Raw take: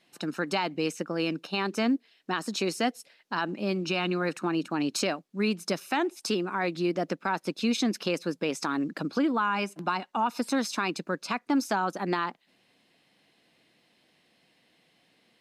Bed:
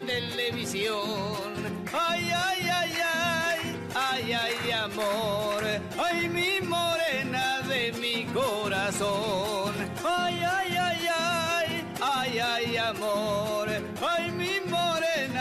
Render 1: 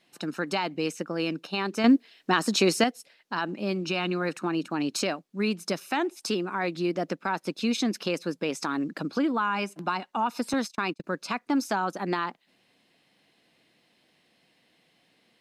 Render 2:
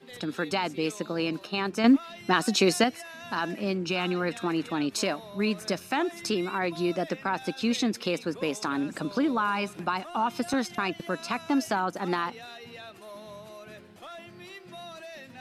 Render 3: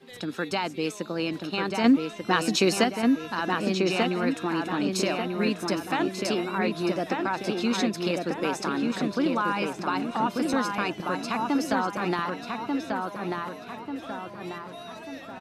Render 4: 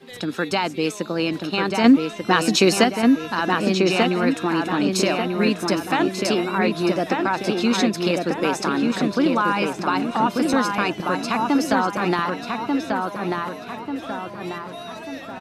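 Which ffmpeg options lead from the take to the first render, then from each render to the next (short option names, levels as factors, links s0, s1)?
-filter_complex "[0:a]asettb=1/sr,asplit=3[s0][s1][s2];[s0]atrim=end=1.844[s3];[s1]atrim=start=1.84:end=2.84,asetpts=PTS-STARTPTS,afade=t=in:d=0.004:c=qsin,afade=t=out:st=0.996:d=0.004:c=qsin,acontrast=83[s4];[s2]atrim=start=2.836[s5];[s3][s4]acrossfade=d=0.004:c1=hsin:c2=qsin[s6];[s6][s5]acrossfade=d=0.004:c1=qsin:c2=hsin,asettb=1/sr,asplit=3[s7][s8][s9];[s7]atrim=end=10.534[s10];[s8]atrim=start=10.53:end=11.04,asetpts=PTS-STARTPTS,afade=t=in:d=0.004:c=qsin,afade=t=out:st=0.506:d=0.004:c=qsin,agate=range=0.0251:threshold=0.02:ratio=16:release=100:detection=peak[s11];[s9]atrim=start=11.036[s12];[s10][s11]acrossfade=d=0.004:c1=hsin:c2=qsin[s13];[s13][s12]acrossfade=d=0.004:c1=qsin:c2=hsin"
-filter_complex "[1:a]volume=0.15[s0];[0:a][s0]amix=inputs=2:normalize=0"
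-filter_complex "[0:a]asplit=2[s0][s1];[s1]adelay=1190,lowpass=f=2700:p=1,volume=0.708,asplit=2[s2][s3];[s3]adelay=1190,lowpass=f=2700:p=1,volume=0.49,asplit=2[s4][s5];[s5]adelay=1190,lowpass=f=2700:p=1,volume=0.49,asplit=2[s6][s7];[s7]adelay=1190,lowpass=f=2700:p=1,volume=0.49,asplit=2[s8][s9];[s9]adelay=1190,lowpass=f=2700:p=1,volume=0.49,asplit=2[s10][s11];[s11]adelay=1190,lowpass=f=2700:p=1,volume=0.49[s12];[s0][s2][s4][s6][s8][s10][s12]amix=inputs=7:normalize=0"
-af "volume=2,alimiter=limit=0.708:level=0:latency=1"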